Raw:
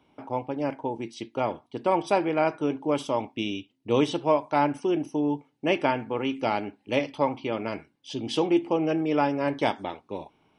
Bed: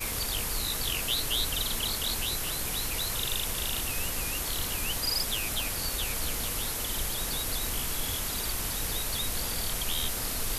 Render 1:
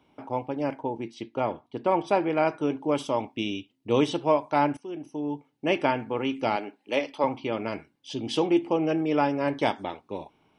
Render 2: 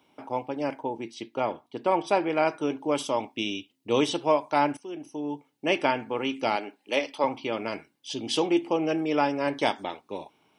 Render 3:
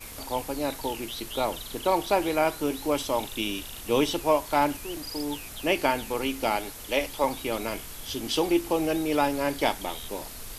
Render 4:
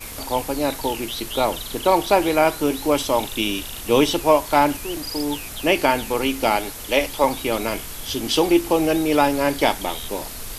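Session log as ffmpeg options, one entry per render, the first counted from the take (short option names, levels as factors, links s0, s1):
-filter_complex "[0:a]asettb=1/sr,asplit=3[s0][s1][s2];[s0]atrim=end=0.824[s3];[s1]atrim=start=0.82:end=2.3,asetpts=PTS-STARTPTS,afade=t=in:d=0.004:c=qsin,afade=t=out:st=1.476:d=0.004:c=qsin,highshelf=f=5400:g=-11.5[s4];[s2]atrim=start=2.296[s5];[s3][s4]acrossfade=d=0.004:c1=hsin:c2=qsin[s6];[s6][s5]acrossfade=d=0.004:c1=qsin:c2=hsin,asettb=1/sr,asplit=3[s7][s8][s9];[s7]atrim=end=6.564[s10];[s8]atrim=start=6.56:end=7.24,asetpts=PTS-STARTPTS,afade=t=in:d=0.004:c=qsin,afade=t=out:st=0.676:d=0.004:c=qsin,highpass=310[s11];[s9]atrim=start=7.236[s12];[s10][s11]acrossfade=d=0.004:c1=hsin:c2=qsin[s13];[s13][s12]acrossfade=d=0.004:c1=qsin:c2=hsin,asplit=2[s14][s15];[s14]atrim=end=4.77,asetpts=PTS-STARTPTS,afade=t=out:st=4.766:d=0.004:c=hsin:silence=0.158489[s16];[s15]atrim=start=4.77,asetpts=PTS-STARTPTS,afade=t=in:d=1.01:silence=0.158489[s17];[s16][s17]concat=n=2:v=0:a=1"
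-af "highpass=f=210:p=1,highshelf=f=4100:g=8.5"
-filter_complex "[1:a]volume=0.355[s0];[0:a][s0]amix=inputs=2:normalize=0"
-af "volume=2.24,alimiter=limit=0.708:level=0:latency=1"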